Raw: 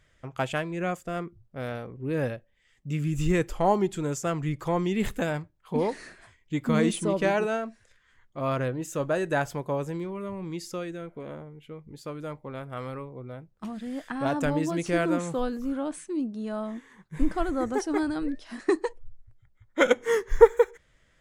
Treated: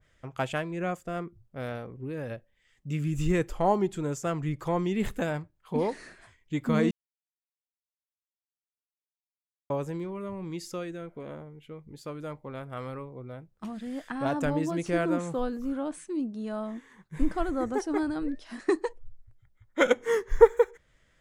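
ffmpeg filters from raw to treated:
ffmpeg -i in.wav -filter_complex "[0:a]asettb=1/sr,asplit=3[link_01][link_02][link_03];[link_01]atrim=end=1.894[link_04];[link_02]atrim=start=1.89:end=2.31,asetpts=PTS-STARTPTS,afade=type=in:duration=0.004:curve=qsin,afade=type=out:start_time=0.416:duration=0.004:curve=qsin,acompressor=threshold=-30dB:ratio=6:attack=3.2:release=140:knee=1:detection=peak[link_05];[link_03]atrim=start=2.306[link_06];[link_04][link_05]acrossfade=duration=0.004:curve1=hsin:curve2=qsin[link_07];[link_07][link_06]acrossfade=duration=0.004:curve1=qsin:curve2=hsin,asplit=3[link_08][link_09][link_10];[link_08]atrim=end=6.91,asetpts=PTS-STARTPTS,afade=type=out:start_time=6.906:duration=0.004:curve=hsin[link_11];[link_09]atrim=start=6.91:end=9.7,asetpts=PTS-STARTPTS,volume=0[link_12];[link_10]atrim=start=9.7,asetpts=PTS-STARTPTS,afade=type=in:duration=0.004:curve=hsin[link_13];[link_11][link_12][link_13]concat=n=3:v=0:a=1,adynamicequalizer=threshold=0.00794:dfrequency=1700:dqfactor=0.7:tfrequency=1700:tqfactor=0.7:attack=5:release=100:ratio=0.375:range=2:mode=cutabove:tftype=highshelf,volume=-1.5dB" out.wav

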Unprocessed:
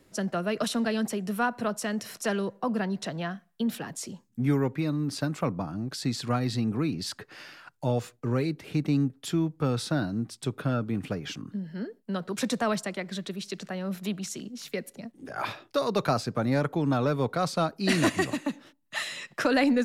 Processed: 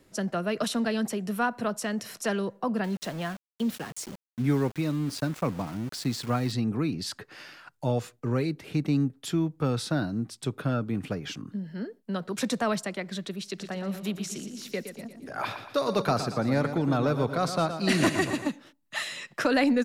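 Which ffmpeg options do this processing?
ffmpeg -i in.wav -filter_complex "[0:a]asettb=1/sr,asplit=3[link_01][link_02][link_03];[link_01]atrim=end=2.844[link_04];[link_02]atrim=start=2.84:end=6.52,asetpts=PTS-STARTPTS,afade=type=in:duration=0.004:curve=qsin,afade=type=out:start_time=3.676:duration=0.004:curve=qsin,aeval=exprs='val(0)*gte(abs(val(0)),0.0106)':channel_layout=same[link_05];[link_03]atrim=start=6.516[link_06];[link_04][link_05]acrossfade=duration=0.004:curve1=hsin:curve2=qsin[link_07];[link_07][link_06]acrossfade=duration=0.004:curve1=qsin:curve2=hsin,asplit=3[link_08][link_09][link_10];[link_08]afade=type=out:start_time=13.58:duration=0.02[link_11];[link_09]aecho=1:1:117|234|351|468|585:0.335|0.161|0.0772|0.037|0.0178,afade=type=in:start_time=13.58:duration=0.02,afade=type=out:start_time=18.48:duration=0.02[link_12];[link_10]afade=type=in:start_time=18.48:duration=0.02[link_13];[link_11][link_12][link_13]amix=inputs=3:normalize=0" out.wav

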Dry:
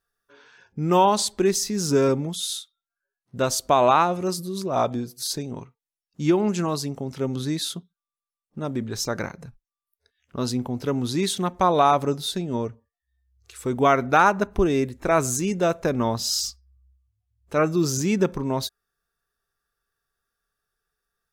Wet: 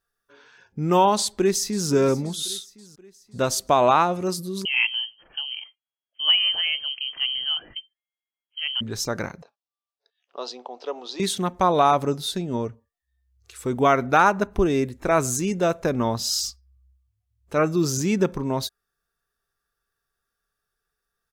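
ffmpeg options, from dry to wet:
ffmpeg -i in.wav -filter_complex "[0:a]asplit=2[link_01][link_02];[link_02]afade=type=in:start_time=1.19:duration=0.01,afade=type=out:start_time=1.89:duration=0.01,aecho=0:1:530|1060|1590|2120:0.141254|0.0706269|0.0353134|0.0176567[link_03];[link_01][link_03]amix=inputs=2:normalize=0,asettb=1/sr,asplit=3[link_04][link_05][link_06];[link_04]atrim=end=4.654[link_07];[link_05]atrim=start=4.65:end=8.81,asetpts=PTS-STARTPTS,afade=type=in:duration=0.004:curve=qsin,afade=type=out:start_time=4.156:duration=0.004:curve=qsin,lowpass=frequency=2800:width_type=q:width=0.5098,lowpass=frequency=2800:width_type=q:width=0.6013,lowpass=frequency=2800:width_type=q:width=0.9,lowpass=frequency=2800:width_type=q:width=2.563,afreqshift=-3300[link_08];[link_06]atrim=start=8.806[link_09];[link_07][link_08]acrossfade=duration=0.004:curve1=hsin:curve2=qsin[link_10];[link_10][link_09]acrossfade=duration=0.004:curve1=qsin:curve2=hsin,asettb=1/sr,asplit=3[link_11][link_12][link_13];[link_11]atrim=end=9.424[link_14];[link_12]atrim=start=9.42:end=11.2,asetpts=PTS-STARTPTS,afade=type=in:duration=0.004:curve=qsin,afade=type=out:start_time=1.776:duration=0.004:curve=qsin,highpass=frequency=470:width=0.5412,highpass=frequency=470:width=1.3066,equalizer=frequency=740:width_type=q:width=4:gain=4,equalizer=frequency=1500:width_type=q:width=4:gain=-8,equalizer=frequency=2100:width_type=q:width=4:gain=-9,lowpass=frequency=5100:width=0.5412,lowpass=frequency=5100:width=1.3066[link_15];[link_13]atrim=start=11.196[link_16];[link_14][link_15]acrossfade=duration=0.004:curve1=hsin:curve2=qsin[link_17];[link_17][link_16]acrossfade=duration=0.004:curve1=qsin:curve2=hsin" out.wav

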